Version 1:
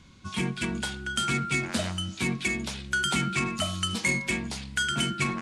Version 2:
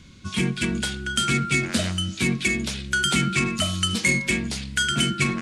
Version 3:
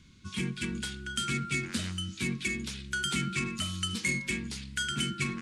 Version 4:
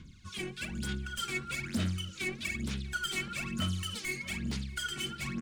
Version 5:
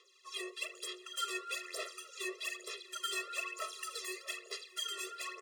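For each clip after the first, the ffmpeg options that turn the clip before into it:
-af "equalizer=f=890:w=1.6:g=-9,acontrast=54"
-af "equalizer=f=640:t=o:w=0.54:g=-14,volume=0.355"
-filter_complex "[0:a]asoftclip=type=tanh:threshold=0.0282,aphaser=in_gain=1:out_gain=1:delay=2.7:decay=0.73:speed=1.1:type=sinusoidal,asplit=2[s0][s1];[s1]adelay=641.4,volume=0.141,highshelf=f=4000:g=-14.4[s2];[s0][s2]amix=inputs=2:normalize=0,volume=0.668"
-af "afftfilt=real='re*eq(mod(floor(b*sr/1024/350),2),1)':imag='im*eq(mod(floor(b*sr/1024/350),2),1)':win_size=1024:overlap=0.75,volume=1.33"

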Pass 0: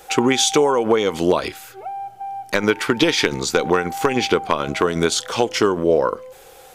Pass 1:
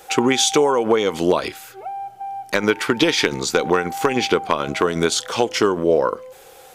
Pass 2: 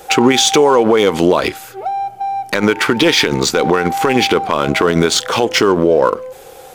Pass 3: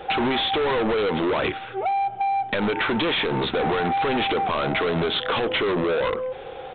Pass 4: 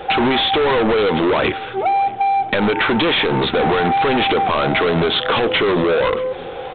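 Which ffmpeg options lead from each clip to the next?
-af "lowshelf=f=65:g=-8.5"
-filter_complex "[0:a]asplit=2[s0][s1];[s1]adynamicsmooth=sensitivity=6:basefreq=580,volume=0.794[s2];[s0][s2]amix=inputs=2:normalize=0,alimiter=level_in=2:limit=0.891:release=50:level=0:latency=1,volume=0.891"
-af "aresample=8000,volume=8.41,asoftclip=hard,volume=0.119,aresample=44100,acompressor=threshold=0.0794:ratio=6,volume=1.12"
-af "aecho=1:1:628|1256|1884:0.0891|0.041|0.0189,aresample=11025,aresample=44100,volume=2.11"

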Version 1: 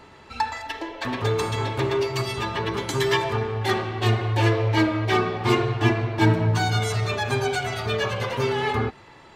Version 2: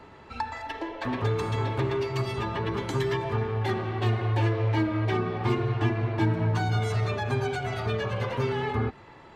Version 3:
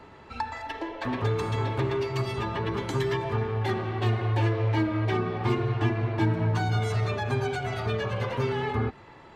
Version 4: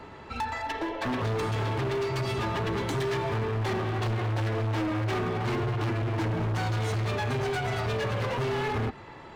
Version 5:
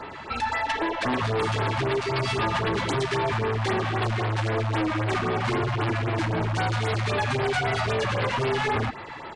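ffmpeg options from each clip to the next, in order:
-filter_complex "[0:a]highshelf=f=3200:g=-11,acrossover=split=300|1000[s0][s1][s2];[s0]acompressor=threshold=0.0708:ratio=4[s3];[s1]acompressor=threshold=0.0224:ratio=4[s4];[s2]acompressor=threshold=0.0178:ratio=4[s5];[s3][s4][s5]amix=inputs=3:normalize=0"
-af anull
-af "asoftclip=type=hard:threshold=0.0299,volume=1.58"
-filter_complex "[0:a]asplit=2[s0][s1];[s1]highpass=f=720:p=1,volume=2.51,asoftclip=type=tanh:threshold=0.0473[s2];[s0][s2]amix=inputs=2:normalize=0,lowpass=f=6900:p=1,volume=0.501,aresample=22050,aresample=44100,afftfilt=real='re*(1-between(b*sr/1024,350*pow(7800/350,0.5+0.5*sin(2*PI*3.8*pts/sr))/1.41,350*pow(7800/350,0.5+0.5*sin(2*PI*3.8*pts/sr))*1.41))':imag='im*(1-between(b*sr/1024,350*pow(7800/350,0.5+0.5*sin(2*PI*3.8*pts/sr))/1.41,350*pow(7800/350,0.5+0.5*sin(2*PI*3.8*pts/sr))*1.41))':win_size=1024:overlap=0.75,volume=2.11"

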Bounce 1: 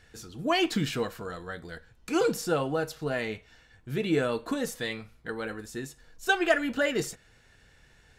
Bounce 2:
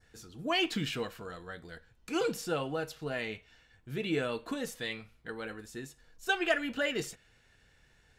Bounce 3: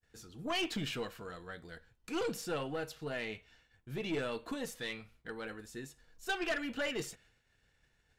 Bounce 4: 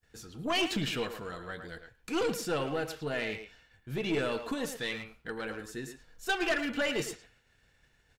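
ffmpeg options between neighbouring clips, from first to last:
-af "adynamicequalizer=threshold=0.00562:dfrequency=2800:dqfactor=1.5:tfrequency=2800:tqfactor=1.5:attack=5:release=100:ratio=0.375:range=3:mode=boostabove:tftype=bell,volume=0.501"
-af "agate=range=0.0224:threshold=0.00126:ratio=3:detection=peak,aeval=exprs='(tanh(22.4*val(0)+0.3)-tanh(0.3))/22.4':c=same,volume=0.841"
-filter_complex "[0:a]asplit=2[s0][s1];[s1]adelay=110,highpass=300,lowpass=3400,asoftclip=type=hard:threshold=0.0168,volume=0.447[s2];[s0][s2]amix=inputs=2:normalize=0,volume=1.78"

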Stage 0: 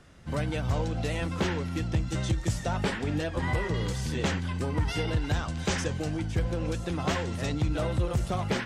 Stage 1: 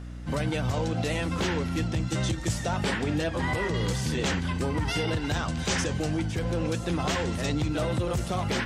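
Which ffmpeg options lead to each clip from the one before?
-filter_complex "[0:a]highpass=100,acrossover=split=2900[s0][s1];[s0]alimiter=level_in=1.06:limit=0.0631:level=0:latency=1:release=23,volume=0.944[s2];[s2][s1]amix=inputs=2:normalize=0,aeval=exprs='val(0)+0.00794*(sin(2*PI*60*n/s)+sin(2*PI*2*60*n/s)/2+sin(2*PI*3*60*n/s)/3+sin(2*PI*4*60*n/s)/4+sin(2*PI*5*60*n/s)/5)':c=same,volume=1.68"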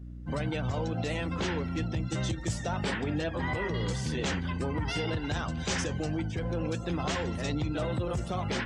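-af "afftdn=nr=18:nf=-44,volume=0.668"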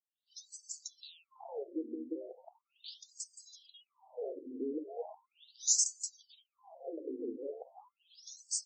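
-af "asuperstop=centerf=1700:order=8:qfactor=0.58,aexciter=amount=9.3:drive=3.2:freq=6200,afftfilt=real='re*between(b*sr/1024,340*pow(6200/340,0.5+0.5*sin(2*PI*0.38*pts/sr))/1.41,340*pow(6200/340,0.5+0.5*sin(2*PI*0.38*pts/sr))*1.41)':imag='im*between(b*sr/1024,340*pow(6200/340,0.5+0.5*sin(2*PI*0.38*pts/sr))/1.41,340*pow(6200/340,0.5+0.5*sin(2*PI*0.38*pts/sr))*1.41)':win_size=1024:overlap=0.75,volume=0.891"

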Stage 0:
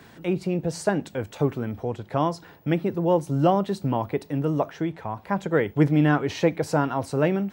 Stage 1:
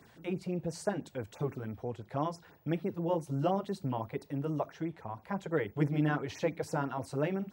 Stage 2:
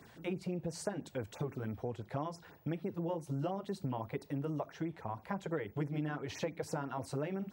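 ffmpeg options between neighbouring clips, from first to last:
-af "afftfilt=real='re*(1-between(b*sr/1024,200*pow(4000/200,0.5+0.5*sin(2*PI*6*pts/sr))/1.41,200*pow(4000/200,0.5+0.5*sin(2*PI*6*pts/sr))*1.41))':imag='im*(1-between(b*sr/1024,200*pow(4000/200,0.5+0.5*sin(2*PI*6*pts/sr))/1.41,200*pow(4000/200,0.5+0.5*sin(2*PI*6*pts/sr))*1.41))':win_size=1024:overlap=0.75,volume=0.355"
-af "acompressor=threshold=0.0178:ratio=6,volume=1.19"

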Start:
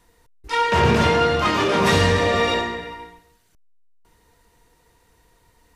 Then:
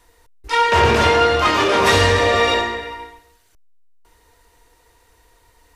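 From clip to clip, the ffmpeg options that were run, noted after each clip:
-af "equalizer=f=170:w=1.6:g=-14.5,volume=1.68"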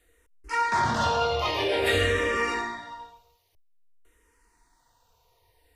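-filter_complex "[0:a]asplit=2[s0][s1];[s1]afreqshift=-0.51[s2];[s0][s2]amix=inputs=2:normalize=1,volume=0.447"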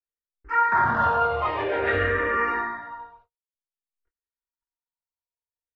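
-af "lowpass=f=1500:t=q:w=2.7,agate=range=0.00891:threshold=0.002:ratio=16:detection=peak,volume=0.891"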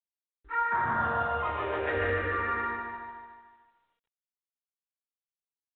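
-af "aecho=1:1:149|298|447|596|745|894|1043:0.708|0.368|0.191|0.0995|0.0518|0.0269|0.014,volume=0.398" -ar 8000 -c:a adpcm_g726 -b:a 40k

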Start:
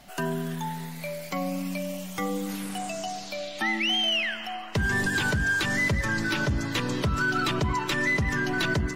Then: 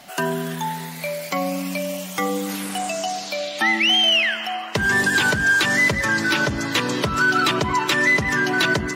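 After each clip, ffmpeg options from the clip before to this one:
-af "highpass=f=310:p=1,volume=2.66"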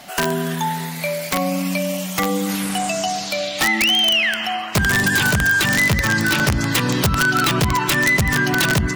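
-af "asubboost=boost=3.5:cutoff=190,acompressor=threshold=0.1:ratio=2.5,aeval=exprs='(mod(5.31*val(0)+1,2)-1)/5.31':c=same,volume=1.68"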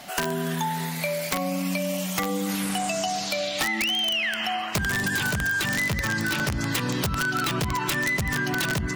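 -af "acompressor=threshold=0.0891:ratio=6,volume=0.794"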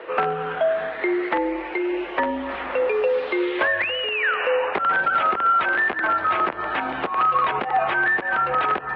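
-filter_complex "[0:a]highpass=f=230:t=q:w=0.5412,highpass=f=230:t=q:w=1.307,lowpass=f=3600:t=q:w=0.5176,lowpass=f=3600:t=q:w=0.7071,lowpass=f=3600:t=q:w=1.932,afreqshift=-230,highpass=59,acrossover=split=270 2000:gain=0.0708 1 0.141[s0][s1][s2];[s0][s1][s2]amix=inputs=3:normalize=0,volume=2.82"

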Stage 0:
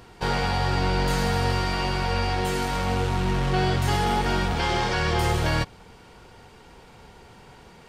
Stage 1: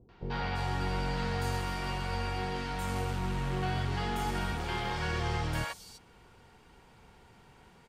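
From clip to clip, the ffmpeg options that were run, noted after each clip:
-filter_complex "[0:a]acrossover=split=520|4900[s0][s1][s2];[s1]adelay=90[s3];[s2]adelay=340[s4];[s0][s3][s4]amix=inputs=3:normalize=0,volume=0.376"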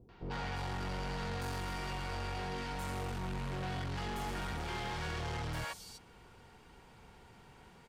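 -af "asoftclip=type=tanh:threshold=0.0168"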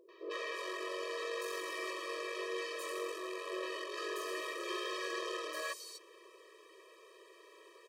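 -af "afftfilt=real='re*eq(mod(floor(b*sr/1024/330),2),1)':imag='im*eq(mod(floor(b*sr/1024/330),2),1)':win_size=1024:overlap=0.75,volume=1.88"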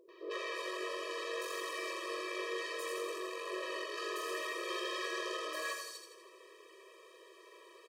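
-af "aecho=1:1:82|164|246|328|410|492:0.501|0.256|0.13|0.0665|0.0339|0.0173"

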